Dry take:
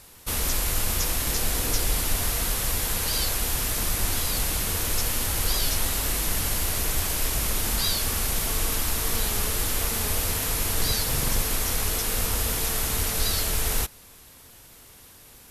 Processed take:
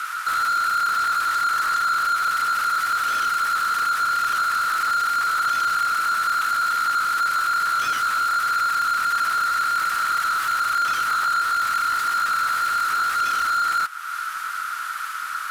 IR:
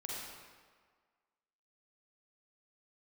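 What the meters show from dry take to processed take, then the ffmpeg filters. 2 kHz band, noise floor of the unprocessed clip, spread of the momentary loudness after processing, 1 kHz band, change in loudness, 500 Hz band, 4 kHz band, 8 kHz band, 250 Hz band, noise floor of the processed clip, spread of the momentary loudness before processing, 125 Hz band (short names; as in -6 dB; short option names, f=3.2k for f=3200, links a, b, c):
+12.0 dB, -50 dBFS, 4 LU, +17.5 dB, +4.0 dB, -12.0 dB, -1.5 dB, -8.5 dB, under -10 dB, -30 dBFS, 1 LU, under -20 dB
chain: -filter_complex "[0:a]acompressor=threshold=-40dB:ratio=2.5,aeval=exprs='val(0)*sin(2*PI*1400*n/s)':c=same,asoftclip=type=tanh:threshold=-34.5dB,highpass=f=1.3k:t=q:w=6.6,asplit=2[a][b];[b]highpass=f=720:p=1,volume=21dB,asoftclip=type=tanh:threshold=-19.5dB[c];[a][c]amix=inputs=2:normalize=0,lowpass=f=3.8k:p=1,volume=-6dB,volume=4dB"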